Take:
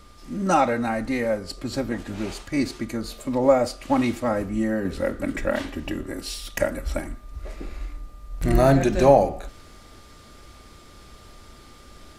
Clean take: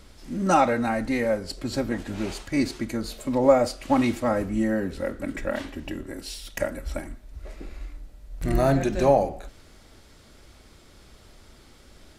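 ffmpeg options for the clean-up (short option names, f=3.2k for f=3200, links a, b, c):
-af "bandreject=f=1.2k:w=30,asetnsamples=n=441:p=0,asendcmd='4.85 volume volume -4dB',volume=0dB"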